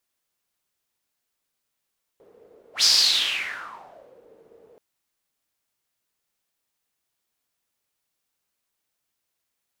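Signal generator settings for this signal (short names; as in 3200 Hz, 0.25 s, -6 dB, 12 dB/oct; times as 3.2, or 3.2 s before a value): whoosh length 2.58 s, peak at 0.63, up 0.11 s, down 1.49 s, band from 460 Hz, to 5000 Hz, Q 6.5, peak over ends 37 dB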